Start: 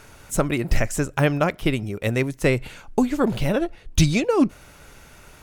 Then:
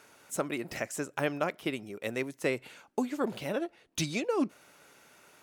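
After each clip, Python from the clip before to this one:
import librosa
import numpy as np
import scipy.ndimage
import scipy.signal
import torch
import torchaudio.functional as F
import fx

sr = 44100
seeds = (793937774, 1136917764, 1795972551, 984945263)

y = scipy.signal.sosfilt(scipy.signal.butter(2, 250.0, 'highpass', fs=sr, output='sos'), x)
y = F.gain(torch.from_numpy(y), -9.0).numpy()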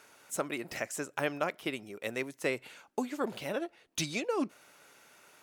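y = fx.low_shelf(x, sr, hz=380.0, db=-5.5)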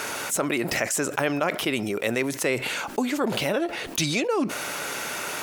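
y = fx.env_flatten(x, sr, amount_pct=70)
y = F.gain(torch.from_numpy(y), 5.5).numpy()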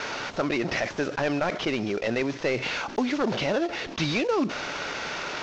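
y = fx.cvsd(x, sr, bps=32000)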